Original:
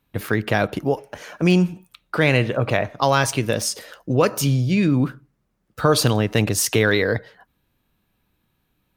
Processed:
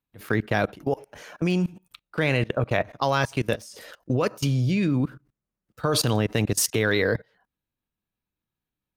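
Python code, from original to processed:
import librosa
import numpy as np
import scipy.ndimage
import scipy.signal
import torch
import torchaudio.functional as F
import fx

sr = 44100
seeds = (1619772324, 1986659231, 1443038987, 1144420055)

y = fx.level_steps(x, sr, step_db=22)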